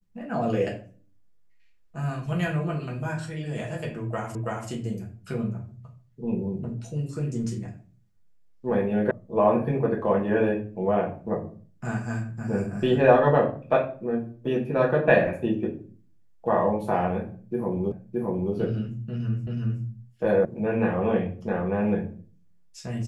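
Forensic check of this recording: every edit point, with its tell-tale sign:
0:04.35: the same again, the last 0.33 s
0:09.11: cut off before it has died away
0:17.92: the same again, the last 0.62 s
0:19.47: the same again, the last 0.37 s
0:20.45: cut off before it has died away

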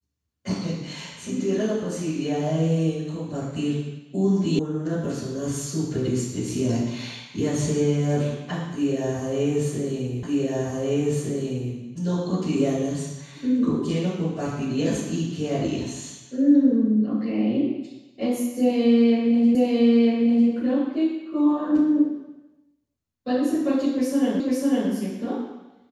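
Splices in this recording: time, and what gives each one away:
0:04.59: cut off before it has died away
0:10.23: the same again, the last 1.51 s
0:19.55: the same again, the last 0.95 s
0:24.40: the same again, the last 0.5 s

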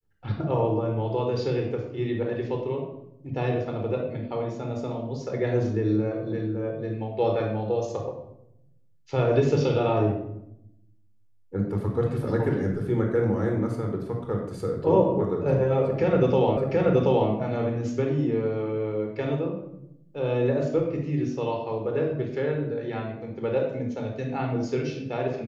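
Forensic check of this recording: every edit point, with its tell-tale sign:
0:16.57: the same again, the last 0.73 s

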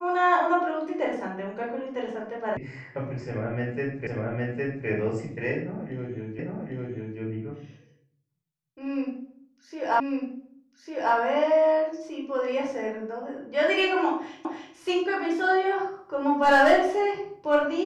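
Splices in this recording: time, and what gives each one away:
0:02.57: cut off before it has died away
0:04.07: the same again, the last 0.81 s
0:06.39: the same again, the last 0.8 s
0:10.00: the same again, the last 1.15 s
0:14.45: the same again, the last 0.3 s

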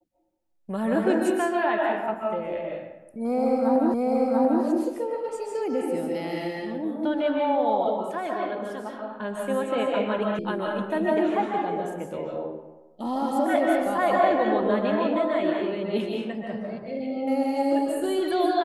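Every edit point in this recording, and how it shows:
0:03.94: the same again, the last 0.69 s
0:10.39: cut off before it has died away

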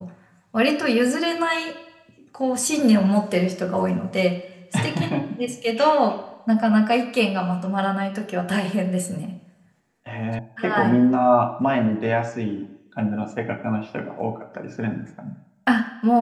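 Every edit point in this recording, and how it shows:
0:10.39: cut off before it has died away

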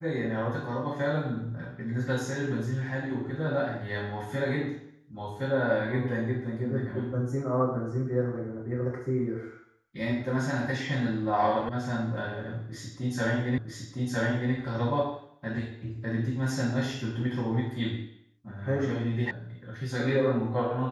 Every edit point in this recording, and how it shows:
0:11.69: cut off before it has died away
0:13.58: the same again, the last 0.96 s
0:19.31: cut off before it has died away

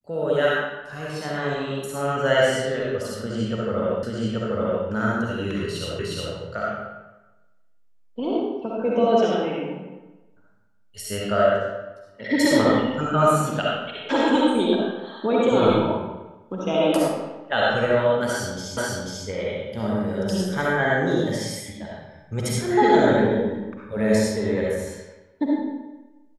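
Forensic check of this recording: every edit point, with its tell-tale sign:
0:04.03: the same again, the last 0.83 s
0:05.99: the same again, the last 0.36 s
0:18.77: the same again, the last 0.49 s

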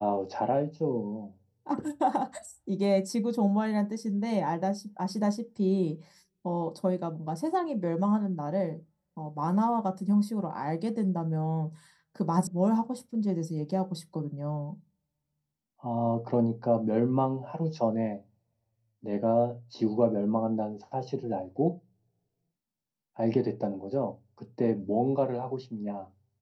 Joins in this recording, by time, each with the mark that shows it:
0:12.47: cut off before it has died away

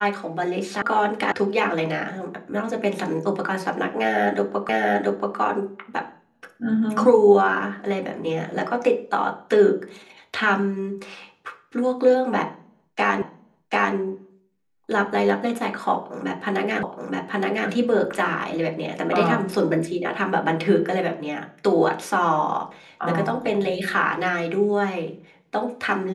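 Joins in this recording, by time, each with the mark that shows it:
0:00.82: cut off before it has died away
0:01.32: cut off before it has died away
0:04.69: the same again, the last 0.68 s
0:13.22: the same again, the last 0.74 s
0:16.83: the same again, the last 0.87 s

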